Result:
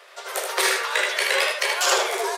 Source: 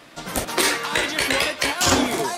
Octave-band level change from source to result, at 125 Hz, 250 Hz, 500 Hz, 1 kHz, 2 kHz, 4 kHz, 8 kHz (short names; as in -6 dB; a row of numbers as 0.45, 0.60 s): under -40 dB, under -15 dB, -0.5 dB, -0.5 dB, +0.5 dB, -1.0 dB, -1.5 dB